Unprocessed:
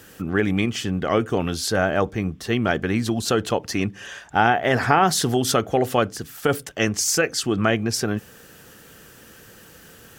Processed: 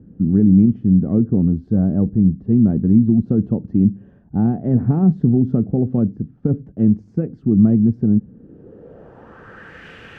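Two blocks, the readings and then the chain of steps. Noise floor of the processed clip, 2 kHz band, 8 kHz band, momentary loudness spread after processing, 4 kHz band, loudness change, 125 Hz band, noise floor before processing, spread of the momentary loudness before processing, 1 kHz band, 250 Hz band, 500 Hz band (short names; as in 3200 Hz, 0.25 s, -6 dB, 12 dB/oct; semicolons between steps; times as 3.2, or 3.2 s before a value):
-48 dBFS, under -15 dB, under -40 dB, 7 LU, under -25 dB, +5.0 dB, +10.0 dB, -48 dBFS, 7 LU, -17.0 dB, +10.5 dB, -5.0 dB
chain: low-pass sweep 210 Hz -> 2400 Hz, 8.27–9.88; gain +6 dB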